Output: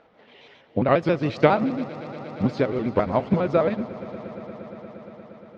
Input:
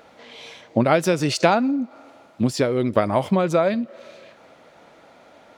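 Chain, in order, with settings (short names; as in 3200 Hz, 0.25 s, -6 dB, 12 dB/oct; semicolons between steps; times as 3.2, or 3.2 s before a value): trilling pitch shifter -2 st, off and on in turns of 68 ms; air absorption 220 m; on a send: swelling echo 0.117 s, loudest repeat 5, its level -17.5 dB; on the sum: upward expander 1.5:1, over -28 dBFS; gain +1.5 dB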